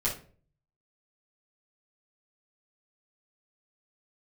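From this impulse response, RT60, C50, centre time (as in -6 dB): no single decay rate, 8.0 dB, 24 ms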